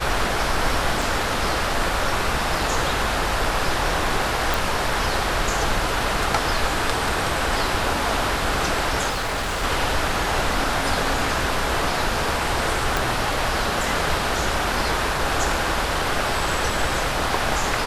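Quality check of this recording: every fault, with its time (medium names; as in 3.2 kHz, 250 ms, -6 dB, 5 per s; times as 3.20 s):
1.02 s: dropout 2.2 ms
4.54 s: pop
9.09–9.64 s: clipped -22 dBFS
12.97 s: pop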